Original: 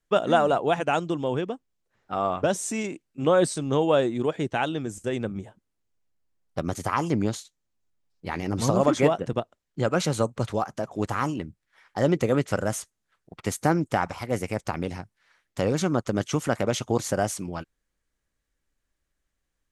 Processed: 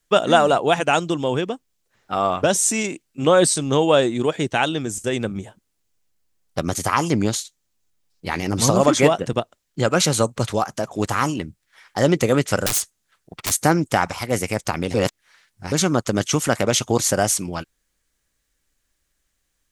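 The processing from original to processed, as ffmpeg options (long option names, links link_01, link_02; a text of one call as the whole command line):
ffmpeg -i in.wav -filter_complex "[0:a]asettb=1/sr,asplit=3[link_01][link_02][link_03];[link_01]atrim=end=12.664[link_04];[link_02]atrim=start=12.66:end=13.52,asetpts=PTS-STARTPTS,afade=type=in:duration=0.004:curve=qsin,afade=type=out:start_time=0.856:duration=0.004:curve=qsin,aeval=exprs='(mod(18.8*val(0)+1,2)-1)/18.8':channel_layout=same[link_05];[link_03]atrim=start=13.516[link_06];[link_04][link_05]acrossfade=duration=0.004:curve1=hsin:curve2=qsin[link_07];[link_07][link_06]acrossfade=duration=0.004:curve1=qsin:curve2=hsin,asplit=3[link_08][link_09][link_10];[link_08]atrim=end=14.942[link_11];[link_09]atrim=start=14.938:end=15.722,asetpts=PTS-STARTPTS,areverse[link_12];[link_10]atrim=start=15.718[link_13];[link_11][link_12]acrossfade=duration=0.004:curve1=hsin:curve2=hsin[link_14];[link_14][link_13]acrossfade=duration=0.004:curve1=hsin:curve2=hsin,highshelf=frequency=2600:gain=9.5,volume=4.5dB" out.wav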